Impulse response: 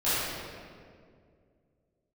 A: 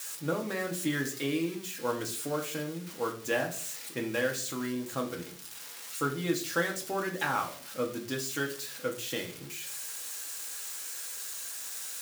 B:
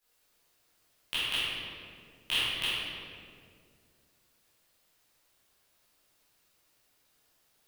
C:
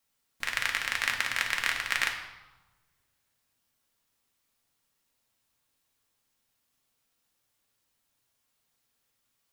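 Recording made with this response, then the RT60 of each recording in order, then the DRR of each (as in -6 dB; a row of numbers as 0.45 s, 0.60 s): B; 0.50 s, 2.2 s, 1.1 s; 1.0 dB, -15.0 dB, 1.0 dB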